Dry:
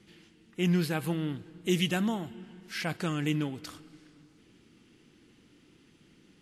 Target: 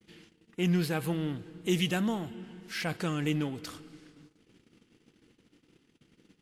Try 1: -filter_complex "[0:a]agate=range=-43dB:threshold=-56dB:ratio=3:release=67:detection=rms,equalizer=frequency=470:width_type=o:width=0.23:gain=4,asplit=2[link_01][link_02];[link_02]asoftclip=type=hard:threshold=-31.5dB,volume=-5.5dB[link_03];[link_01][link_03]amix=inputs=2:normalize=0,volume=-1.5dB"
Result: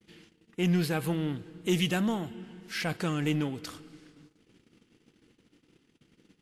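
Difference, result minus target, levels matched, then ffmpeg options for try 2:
hard clipping: distortion −4 dB
-filter_complex "[0:a]agate=range=-43dB:threshold=-56dB:ratio=3:release=67:detection=rms,equalizer=frequency=470:width_type=o:width=0.23:gain=4,asplit=2[link_01][link_02];[link_02]asoftclip=type=hard:threshold=-41dB,volume=-5.5dB[link_03];[link_01][link_03]amix=inputs=2:normalize=0,volume=-1.5dB"

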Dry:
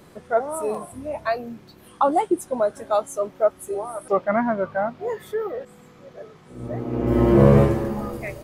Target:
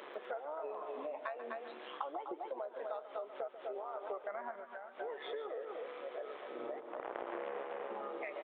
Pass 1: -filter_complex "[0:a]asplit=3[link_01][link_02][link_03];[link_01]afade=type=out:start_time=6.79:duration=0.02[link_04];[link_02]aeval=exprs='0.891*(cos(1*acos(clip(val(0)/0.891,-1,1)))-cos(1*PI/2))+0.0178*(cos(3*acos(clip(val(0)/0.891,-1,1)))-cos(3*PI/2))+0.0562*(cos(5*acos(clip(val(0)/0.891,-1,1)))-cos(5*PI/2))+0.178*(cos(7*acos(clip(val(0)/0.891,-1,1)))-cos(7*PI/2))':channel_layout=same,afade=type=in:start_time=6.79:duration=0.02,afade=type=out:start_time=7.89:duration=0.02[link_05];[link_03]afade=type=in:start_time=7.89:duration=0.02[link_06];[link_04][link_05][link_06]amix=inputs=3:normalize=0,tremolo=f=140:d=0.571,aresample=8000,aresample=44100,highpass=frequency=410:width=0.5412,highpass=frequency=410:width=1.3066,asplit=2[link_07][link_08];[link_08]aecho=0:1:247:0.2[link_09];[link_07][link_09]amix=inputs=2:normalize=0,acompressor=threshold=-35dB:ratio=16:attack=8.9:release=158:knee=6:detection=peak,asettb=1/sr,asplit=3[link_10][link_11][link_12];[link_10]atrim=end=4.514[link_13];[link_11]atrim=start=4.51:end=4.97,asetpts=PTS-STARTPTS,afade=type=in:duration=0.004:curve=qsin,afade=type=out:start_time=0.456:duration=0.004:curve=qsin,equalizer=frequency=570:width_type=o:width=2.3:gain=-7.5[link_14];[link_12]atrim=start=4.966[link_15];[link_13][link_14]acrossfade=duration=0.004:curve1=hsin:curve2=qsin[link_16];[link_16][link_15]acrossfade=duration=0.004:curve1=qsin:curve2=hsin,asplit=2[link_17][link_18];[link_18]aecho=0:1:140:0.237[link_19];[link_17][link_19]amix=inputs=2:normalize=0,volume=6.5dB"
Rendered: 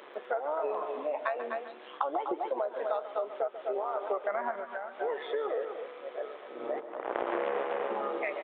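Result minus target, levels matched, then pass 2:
downward compressor: peak gain reduction −10.5 dB
-filter_complex "[0:a]asplit=3[link_01][link_02][link_03];[link_01]afade=type=out:start_time=6.79:duration=0.02[link_04];[link_02]aeval=exprs='0.891*(cos(1*acos(clip(val(0)/0.891,-1,1)))-cos(1*PI/2))+0.0178*(cos(3*acos(clip(val(0)/0.891,-1,1)))-cos(3*PI/2))+0.0562*(cos(5*acos(clip(val(0)/0.891,-1,1)))-cos(5*PI/2))+0.178*(cos(7*acos(clip(val(0)/0.891,-1,1)))-cos(7*PI/2))':channel_layout=same,afade=type=in:start_time=6.79:duration=0.02,afade=type=out:start_time=7.89:duration=0.02[link_05];[link_03]afade=type=in:start_time=7.89:duration=0.02[link_06];[link_04][link_05][link_06]amix=inputs=3:normalize=0,tremolo=f=140:d=0.571,aresample=8000,aresample=44100,highpass=frequency=410:width=0.5412,highpass=frequency=410:width=1.3066,asplit=2[link_07][link_08];[link_08]aecho=0:1:247:0.2[link_09];[link_07][link_09]amix=inputs=2:normalize=0,acompressor=threshold=-46dB:ratio=16:attack=8.9:release=158:knee=6:detection=peak,asettb=1/sr,asplit=3[link_10][link_11][link_12];[link_10]atrim=end=4.514[link_13];[link_11]atrim=start=4.51:end=4.97,asetpts=PTS-STARTPTS,afade=type=in:duration=0.004:curve=qsin,afade=type=out:start_time=0.456:duration=0.004:curve=qsin,equalizer=frequency=570:width_type=o:width=2.3:gain=-7.5[link_14];[link_12]atrim=start=4.966[link_15];[link_13][link_14]acrossfade=duration=0.004:curve1=hsin:curve2=qsin[link_16];[link_16][link_15]acrossfade=duration=0.004:curve1=qsin:curve2=hsin,asplit=2[link_17][link_18];[link_18]aecho=0:1:140:0.237[link_19];[link_17][link_19]amix=inputs=2:normalize=0,volume=6.5dB"

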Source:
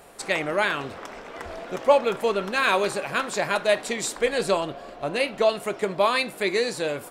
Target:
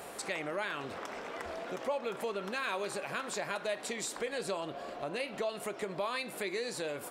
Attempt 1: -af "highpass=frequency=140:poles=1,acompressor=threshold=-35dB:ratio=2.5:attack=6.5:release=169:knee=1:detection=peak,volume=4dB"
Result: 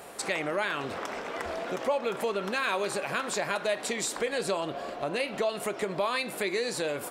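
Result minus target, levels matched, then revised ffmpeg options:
downward compressor: peak gain reduction −6.5 dB
-af "highpass=frequency=140:poles=1,acompressor=threshold=-45.5dB:ratio=2.5:attack=6.5:release=169:knee=1:detection=peak,volume=4dB"

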